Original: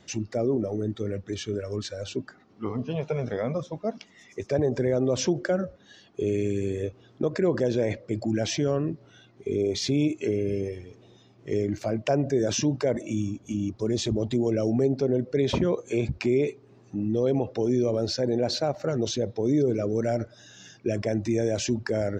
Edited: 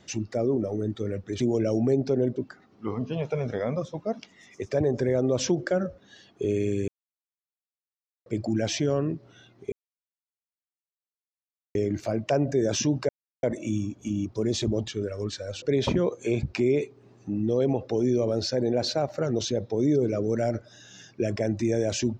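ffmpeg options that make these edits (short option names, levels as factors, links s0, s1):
-filter_complex "[0:a]asplit=10[s0][s1][s2][s3][s4][s5][s6][s7][s8][s9];[s0]atrim=end=1.402[s10];[s1]atrim=start=14.318:end=15.282[s11];[s2]atrim=start=2.138:end=6.66,asetpts=PTS-STARTPTS,afade=t=out:st=4.518:d=0.004:c=hsin[s12];[s3]atrim=start=6.66:end=8.04,asetpts=PTS-STARTPTS,volume=0[s13];[s4]atrim=start=8.04:end=9.5,asetpts=PTS-STARTPTS,afade=t=in:d=0.004:c=hsin,afade=t=out:st=1.456:d=0.004:c=hsin[s14];[s5]atrim=start=9.5:end=11.53,asetpts=PTS-STARTPTS,volume=0[s15];[s6]atrim=start=11.53:end=12.87,asetpts=PTS-STARTPTS,afade=t=in:d=0.004:c=hsin,afade=t=out:st=1.336:d=0.004:c=hsin,apad=pad_dur=0.34[s16];[s7]atrim=start=12.87:end=14.322,asetpts=PTS-STARTPTS,afade=t=in:d=0.004:c=hsin[s17];[s8]atrim=start=1.398:end=2.142[s18];[s9]atrim=start=15.278[s19];[s10][s11]acrossfade=d=0.004:c1=hsin:c2=hsin[s20];[s12][s13][s14][s15][s16][s17]concat=n=6:v=0:a=1[s21];[s20][s21]acrossfade=d=0.004:c1=hsin:c2=hsin[s22];[s22][s18]acrossfade=d=0.004:c1=hsin:c2=hsin[s23];[s23][s19]acrossfade=d=0.004:c1=hsin:c2=hsin"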